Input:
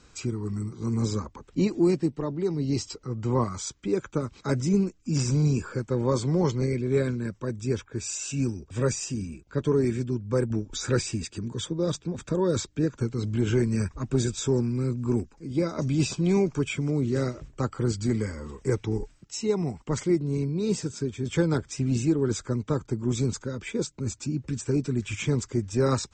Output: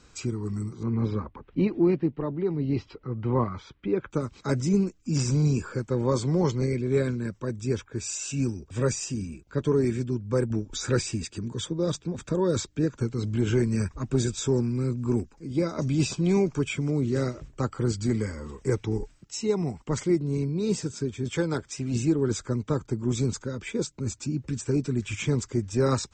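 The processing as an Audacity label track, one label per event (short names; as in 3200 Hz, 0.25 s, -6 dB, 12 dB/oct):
0.830000	4.110000	LPF 3200 Hz 24 dB/oct
21.290000	21.940000	low shelf 270 Hz -7 dB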